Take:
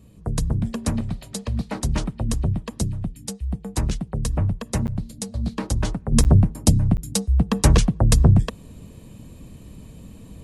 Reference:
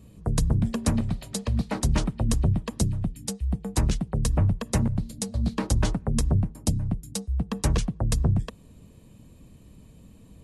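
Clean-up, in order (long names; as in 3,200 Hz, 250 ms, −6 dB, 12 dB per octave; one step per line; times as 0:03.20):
repair the gap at 0:04.87/0:06.24/0:06.97, 9.1 ms
level 0 dB, from 0:06.12 −8.5 dB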